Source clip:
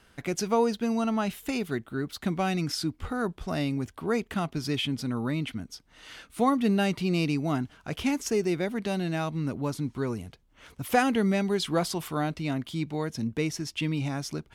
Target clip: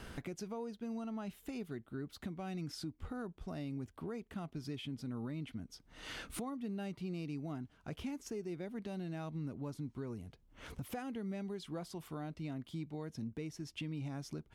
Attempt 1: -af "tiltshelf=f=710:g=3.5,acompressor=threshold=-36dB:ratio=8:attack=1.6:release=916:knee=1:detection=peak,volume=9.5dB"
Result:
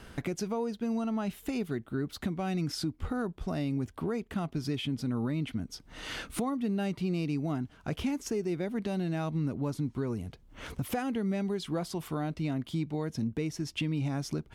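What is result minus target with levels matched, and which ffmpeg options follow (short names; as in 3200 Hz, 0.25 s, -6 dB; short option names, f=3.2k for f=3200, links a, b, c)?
compressor: peak gain reduction -10 dB
-af "tiltshelf=f=710:g=3.5,acompressor=threshold=-47.5dB:ratio=8:attack=1.6:release=916:knee=1:detection=peak,volume=9.5dB"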